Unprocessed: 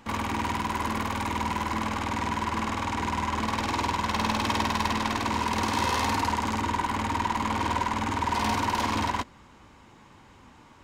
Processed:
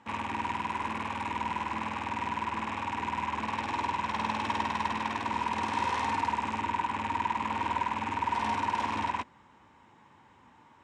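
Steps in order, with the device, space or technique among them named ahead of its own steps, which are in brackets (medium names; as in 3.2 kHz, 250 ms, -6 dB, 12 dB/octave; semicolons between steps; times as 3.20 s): car door speaker with a rattle (rattle on loud lows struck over -41 dBFS, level -23 dBFS; cabinet simulation 91–8300 Hz, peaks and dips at 910 Hz +7 dB, 1.8 kHz +4 dB, 4.6 kHz -7 dB, 6.5 kHz -5 dB); trim -7.5 dB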